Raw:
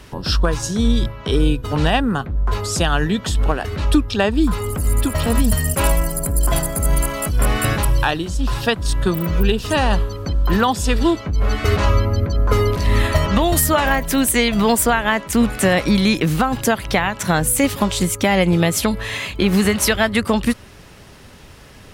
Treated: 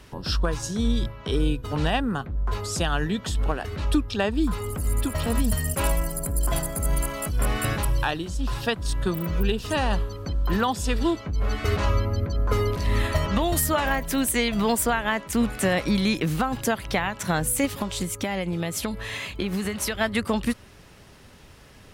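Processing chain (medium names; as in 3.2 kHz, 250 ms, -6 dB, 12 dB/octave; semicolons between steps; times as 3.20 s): 17.65–20.01 s: compression, threshold -17 dBFS, peak gain reduction 6.5 dB; trim -7 dB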